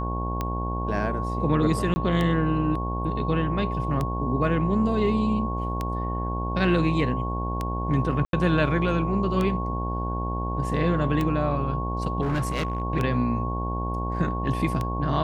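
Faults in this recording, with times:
buzz 60 Hz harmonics 17 -29 dBFS
tick 33 1/3 rpm -14 dBFS
whine 1.1 kHz -31 dBFS
1.94–1.96 s: dropout 20 ms
8.25–8.33 s: dropout 82 ms
12.21–12.82 s: clipped -21.5 dBFS

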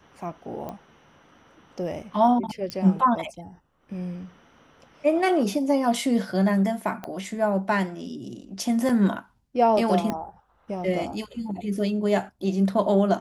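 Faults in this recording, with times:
0.69 s: pop -21 dBFS
2.70 s: pop -17 dBFS
7.04 s: pop -19 dBFS
8.89 s: dropout 4.1 ms
10.10 s: pop -14 dBFS

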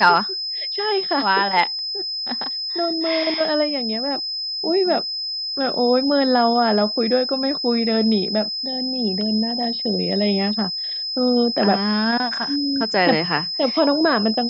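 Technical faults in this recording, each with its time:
whine 5.1 kHz -24 dBFS

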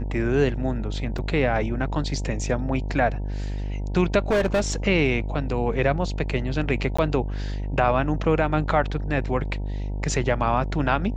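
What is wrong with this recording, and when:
buzz 50 Hz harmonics 19 -28 dBFS
1.18–1.19 s: dropout 5.1 ms
4.30–4.72 s: clipped -17 dBFS
6.97–6.99 s: dropout 15 ms

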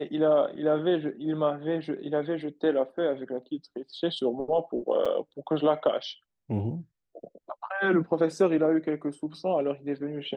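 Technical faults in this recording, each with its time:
5.05–5.06 s: dropout 5.4 ms

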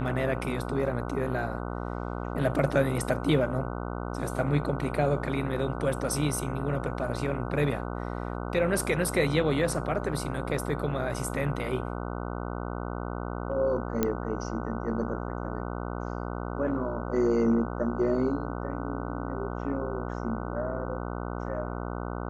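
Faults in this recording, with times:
buzz 60 Hz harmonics 25 -34 dBFS
14.03 s: pop -11 dBFS

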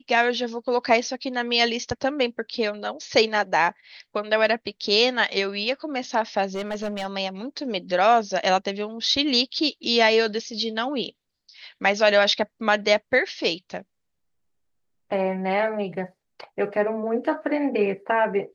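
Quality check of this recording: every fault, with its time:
6.55–7.06 s: clipped -24 dBFS

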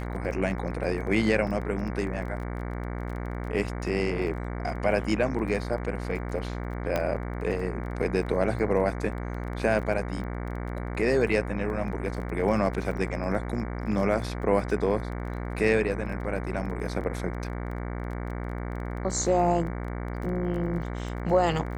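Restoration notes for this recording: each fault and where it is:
buzz 60 Hz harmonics 38 -33 dBFS
crackle 18 per s -36 dBFS
1.47 s: dropout 3.2 ms
6.96 s: pop -13 dBFS

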